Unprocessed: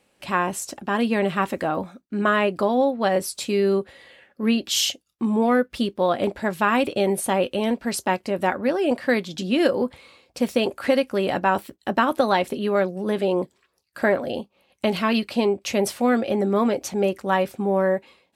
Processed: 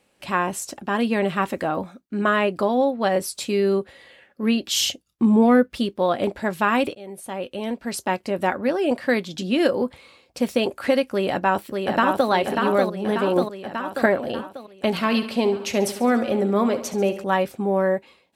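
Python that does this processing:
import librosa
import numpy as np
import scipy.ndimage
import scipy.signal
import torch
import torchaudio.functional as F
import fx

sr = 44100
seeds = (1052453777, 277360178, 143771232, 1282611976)

y = fx.low_shelf(x, sr, hz=320.0, db=8.5, at=(4.8, 5.7))
y = fx.echo_throw(y, sr, start_s=11.12, length_s=1.18, ms=590, feedback_pct=60, wet_db=-4.0)
y = fx.echo_feedback(y, sr, ms=70, feedback_pct=55, wet_db=-12.5, at=(14.93, 17.24))
y = fx.edit(y, sr, fx.fade_in_from(start_s=6.95, length_s=1.34, floor_db=-22.5),
    fx.clip_gain(start_s=13.36, length_s=0.7, db=3.5), tone=tone)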